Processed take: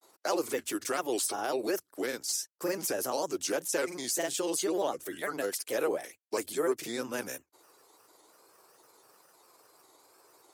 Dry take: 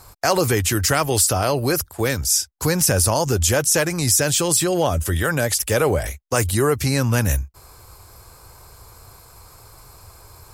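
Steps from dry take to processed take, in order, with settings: granulator, spray 26 ms, pitch spread up and down by 3 st; ladder high-pass 270 Hz, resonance 40%; trim -4 dB

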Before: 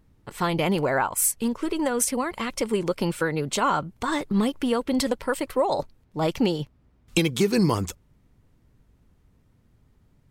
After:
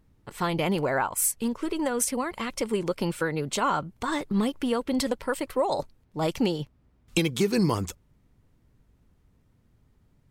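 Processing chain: 5.62–6.48 s: dynamic bell 9.1 kHz, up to +5 dB, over -52 dBFS, Q 0.78; trim -2.5 dB

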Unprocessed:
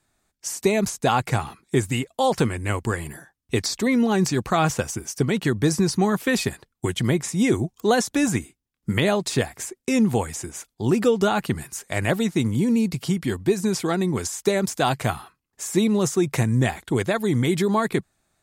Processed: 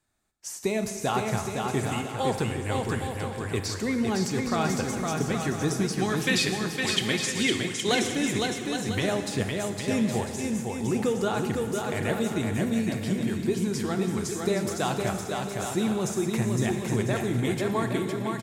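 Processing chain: 5.95–7.95 s: frequency weighting D; bouncing-ball echo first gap 510 ms, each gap 0.6×, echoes 5; plate-style reverb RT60 2.2 s, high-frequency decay 0.85×, DRR 7 dB; trim -7.5 dB

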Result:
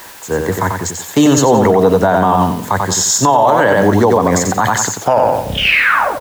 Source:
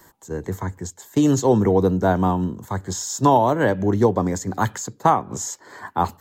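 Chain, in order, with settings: tape stop on the ending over 1.39 s; peaking EQ 360 Hz -6.5 dB 0.78 oct; added noise white -52 dBFS; tone controls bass -11 dB, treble -4 dB; feedback delay 90 ms, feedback 31%, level -5.5 dB; loudness maximiser +18 dB; trim -1 dB

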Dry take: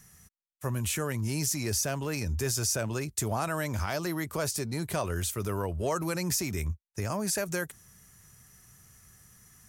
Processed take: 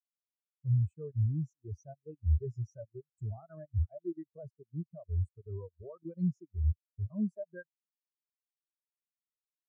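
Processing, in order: level held to a coarse grid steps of 16 dB; spectral contrast expander 4:1

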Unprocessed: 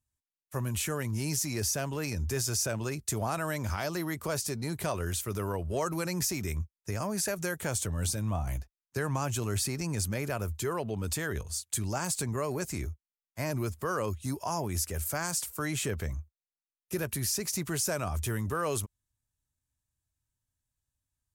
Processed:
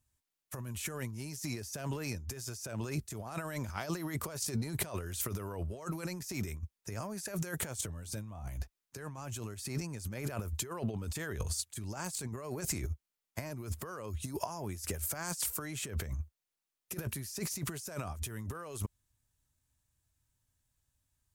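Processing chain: compressor with a negative ratio -37 dBFS, ratio -0.5

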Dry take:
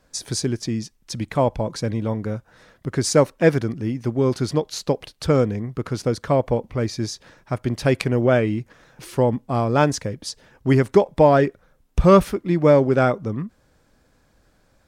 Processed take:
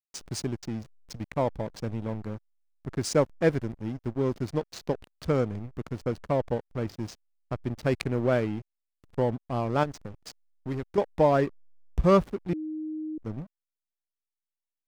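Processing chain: 9.83–10.98 s: compression 2:1, threshold -27 dBFS, peak gain reduction 9.5 dB; hysteresis with a dead band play -23.5 dBFS; 12.53–13.18 s: bleep 311 Hz -24 dBFS; trim -7 dB

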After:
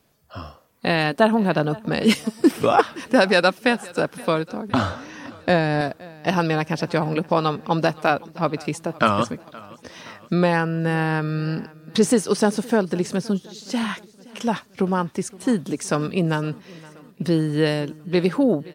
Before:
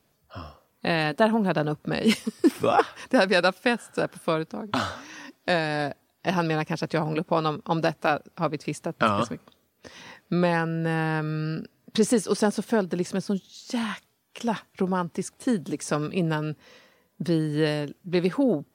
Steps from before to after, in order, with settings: 4.69–5.81 s: tilt EQ -2 dB/octave; on a send: feedback delay 519 ms, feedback 57%, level -22 dB; on the sum: trim +4 dB

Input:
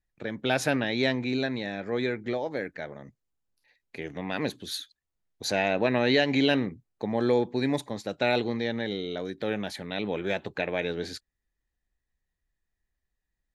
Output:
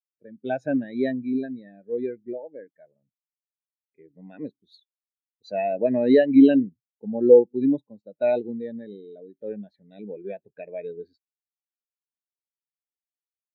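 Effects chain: spectral contrast expander 2.5:1; trim +7 dB

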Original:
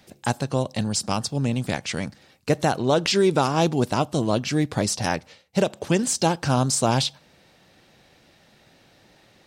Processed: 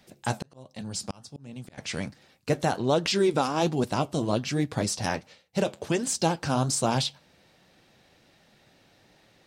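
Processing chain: flange 1.3 Hz, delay 4 ms, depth 8 ms, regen -62%; 0.42–1.78 s: slow attack 677 ms

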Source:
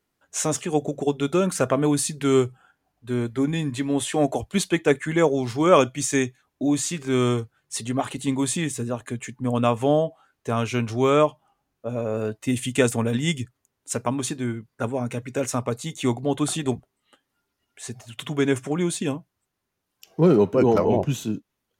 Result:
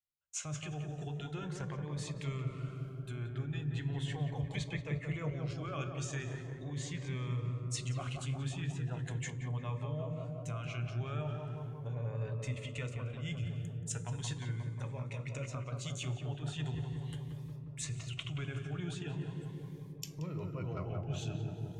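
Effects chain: recorder AGC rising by 12 dB/s; de-hum 53.83 Hz, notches 11; low-pass that closes with the level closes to 2.2 kHz, closed at -18 dBFS; FFT filter 150 Hz 0 dB, 210 Hz -20 dB, 2.5 kHz 0 dB; two-slope reverb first 0.3 s, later 3.1 s, from -17 dB, DRR 12 dB; dynamic bell 7.1 kHz, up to +5 dB, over -54 dBFS, Q 2.4; reverse; compression 5:1, threshold -40 dBFS, peak gain reduction 19.5 dB; reverse; gate with hold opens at -53 dBFS; on a send: filtered feedback delay 178 ms, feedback 83%, low-pass 1.3 kHz, level -4 dB; on the sum: Shepard-style phaser rising 0.39 Hz; trim +1 dB

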